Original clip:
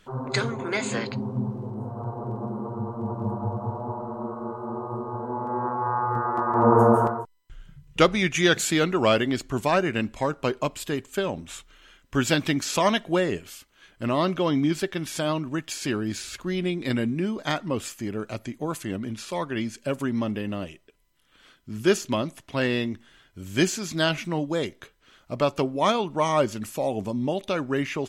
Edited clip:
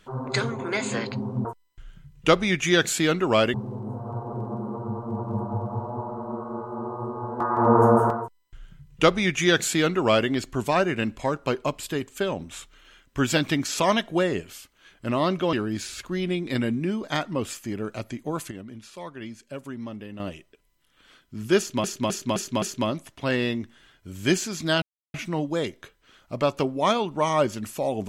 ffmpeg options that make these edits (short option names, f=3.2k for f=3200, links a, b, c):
-filter_complex "[0:a]asplit=12[a][b][c][d][e][f][g][h][i][j][k][l];[a]atrim=end=1.452[m];[b]atrim=start=7.168:end=9.262[n];[c]atrim=start=1.448:end=5.312[o];[d]atrim=start=6.368:end=14.502[p];[e]atrim=start=15.878:end=18.862[q];[f]atrim=start=18.858:end=20.552,asetpts=PTS-STARTPTS,volume=-9dB[r];[g]atrim=start=20.548:end=22.192[s];[h]atrim=start=21.928:end=22.192[t];[i]atrim=start=21.928:end=22.192[u];[j]atrim=start=21.928:end=22.192[v];[k]atrim=start=21.928:end=24.13,asetpts=PTS-STARTPTS,afade=t=out:st=2.198:d=0.004:c=hsin,apad=pad_dur=0.32[w];[l]atrim=start=24.13,asetpts=PTS-STARTPTS,afade=t=in:d=0.004:c=hsin[x];[m][n]acrossfade=d=0.004:c1=hsin:c2=hsin[y];[y][o]acrossfade=d=0.004:c1=hsin:c2=hsin[z];[z][p]acrossfade=d=0.004:c1=hsin:c2=hsin[aa];[aa][q]acrossfade=d=0.004:c1=hsin:c2=hsin[ab];[ab][r]acrossfade=d=0.004:c1=hsin:c2=hsin[ac];[ac][s]acrossfade=d=0.004:c1=hsin:c2=hsin[ad];[ad][t]acrossfade=d=0.004:c1=hsin:c2=hsin[ae];[ae][u]acrossfade=d=0.004:c1=hsin:c2=hsin[af];[af][v]acrossfade=d=0.004:c1=hsin:c2=hsin[ag];[w][x]concat=n=2:v=0:a=1[ah];[ag][ah]acrossfade=d=0.004:c1=hsin:c2=hsin"